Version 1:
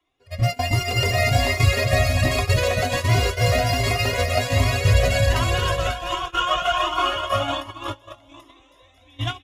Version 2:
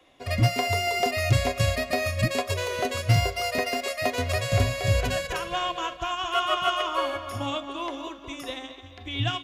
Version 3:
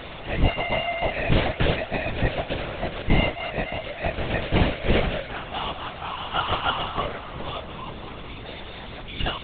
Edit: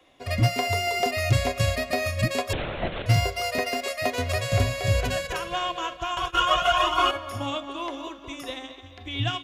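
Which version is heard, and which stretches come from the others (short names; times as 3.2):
2
2.53–3.06 from 3
6.17–7.11 from 1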